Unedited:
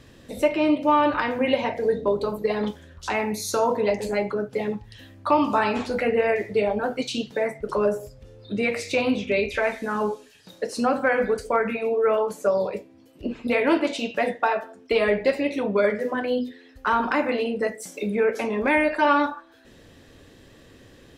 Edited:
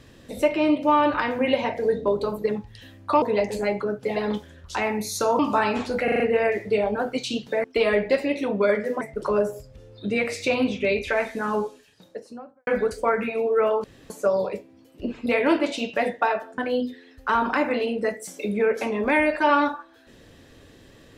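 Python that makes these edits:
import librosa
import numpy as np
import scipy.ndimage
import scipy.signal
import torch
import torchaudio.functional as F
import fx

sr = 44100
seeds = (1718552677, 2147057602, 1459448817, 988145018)

y = fx.studio_fade_out(x, sr, start_s=10.02, length_s=1.12)
y = fx.edit(y, sr, fx.swap(start_s=2.49, length_s=1.23, other_s=4.66, other_length_s=0.73),
    fx.stutter(start_s=6.04, slice_s=0.04, count=5),
    fx.insert_room_tone(at_s=12.31, length_s=0.26),
    fx.move(start_s=14.79, length_s=1.37, to_s=7.48), tone=tone)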